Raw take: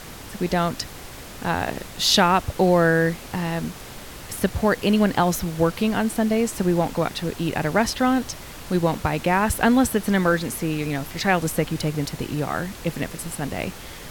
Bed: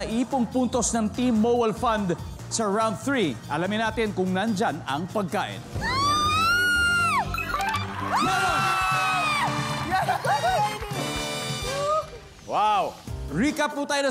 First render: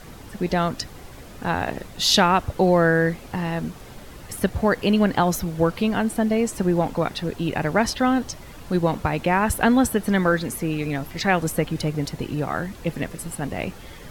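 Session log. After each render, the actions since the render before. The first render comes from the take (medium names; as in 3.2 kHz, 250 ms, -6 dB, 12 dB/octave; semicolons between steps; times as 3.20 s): noise reduction 8 dB, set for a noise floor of -39 dBFS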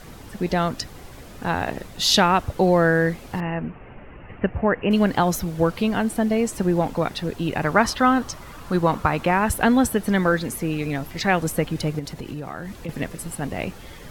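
3.40–4.91 s: Chebyshev low-pass 2.8 kHz, order 6; 7.63–9.31 s: peaking EQ 1.2 kHz +8.5 dB 0.75 oct; 11.99–12.89 s: compression 5:1, threshold -28 dBFS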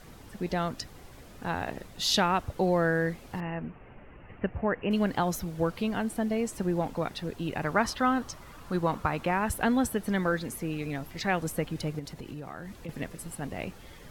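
trim -8 dB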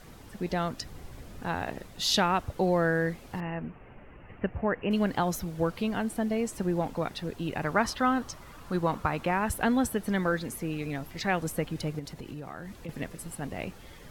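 0.86–1.42 s: bass shelf 230 Hz +7 dB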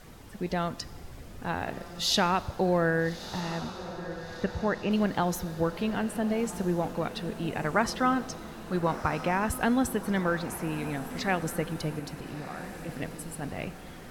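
echo that smears into a reverb 1313 ms, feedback 48%, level -12.5 dB; Schroeder reverb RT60 1.6 s, combs from 30 ms, DRR 18 dB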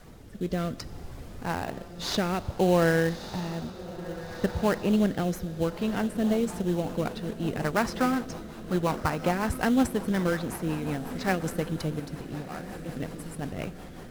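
rotary cabinet horn 0.6 Hz, later 5.5 Hz, at 5.68 s; in parallel at -5 dB: sample-rate reducer 3.5 kHz, jitter 20%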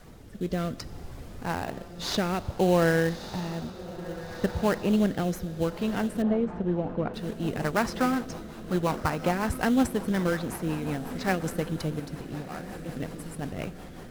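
6.22–7.14 s: low-pass 1.7 kHz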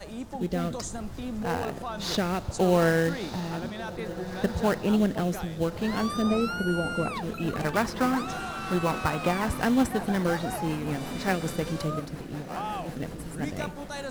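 add bed -12.5 dB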